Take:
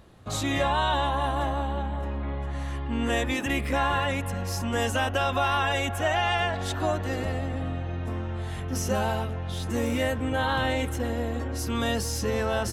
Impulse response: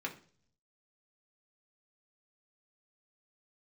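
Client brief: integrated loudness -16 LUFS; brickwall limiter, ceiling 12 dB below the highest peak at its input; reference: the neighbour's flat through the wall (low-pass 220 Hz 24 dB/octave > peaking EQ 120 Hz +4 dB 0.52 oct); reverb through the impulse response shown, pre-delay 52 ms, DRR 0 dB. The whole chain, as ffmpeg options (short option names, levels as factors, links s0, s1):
-filter_complex "[0:a]alimiter=level_in=1.12:limit=0.0631:level=0:latency=1,volume=0.891,asplit=2[s0][s1];[1:a]atrim=start_sample=2205,adelay=52[s2];[s1][s2]afir=irnorm=-1:irlink=0,volume=0.794[s3];[s0][s3]amix=inputs=2:normalize=0,lowpass=f=220:w=0.5412,lowpass=f=220:w=1.3066,equalizer=f=120:t=o:w=0.52:g=4,volume=8.91"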